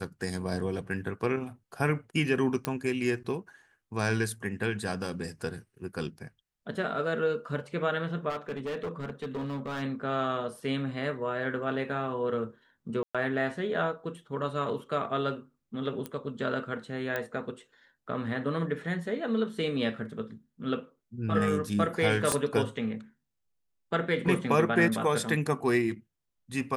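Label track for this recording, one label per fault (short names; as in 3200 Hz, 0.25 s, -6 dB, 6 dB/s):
2.650000	2.650000	pop -14 dBFS
8.290000	9.830000	clipped -30.5 dBFS
13.030000	13.150000	gap 0.116 s
16.060000	16.060000	pop -21 dBFS
17.160000	17.160000	pop -17 dBFS
22.320000	22.320000	pop -12 dBFS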